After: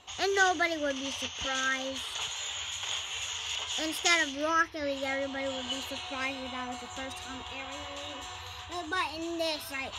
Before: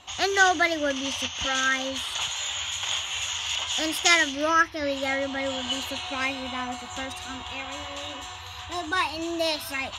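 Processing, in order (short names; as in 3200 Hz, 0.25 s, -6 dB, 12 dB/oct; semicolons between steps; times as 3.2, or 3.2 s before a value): bell 440 Hz +11.5 dB 0.23 oct; reverse; upward compressor, threshold -30 dBFS; reverse; gain -6 dB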